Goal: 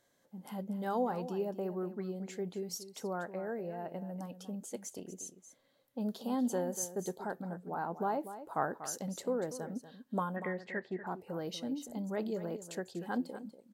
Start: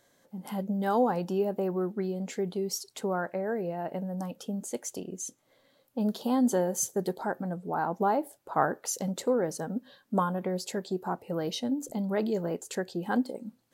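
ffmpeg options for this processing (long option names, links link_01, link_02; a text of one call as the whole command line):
ffmpeg -i in.wav -filter_complex "[0:a]asettb=1/sr,asplit=3[link_01][link_02][link_03];[link_01]atrim=end=10.364[link_04];[link_02]atrim=start=10.36:end=11.07,asetpts=PTS-STARTPTS,afade=type=in:duration=0.004:curve=qsin,afade=type=out:start_time=0.706:duration=0.004:curve=qsin,lowpass=frequency=1900:width_type=q:width=8.7[link_05];[link_03]atrim=start=11.066[link_06];[link_04][link_05]acrossfade=duration=0.004:curve1=hsin:curve2=qsin[link_07];[link_07][link_06]acrossfade=duration=0.004:curve1=qsin:curve2=hsin,asplit=2[link_08][link_09];[link_09]aecho=0:1:240:0.237[link_10];[link_08][link_10]amix=inputs=2:normalize=0,volume=-7.5dB" out.wav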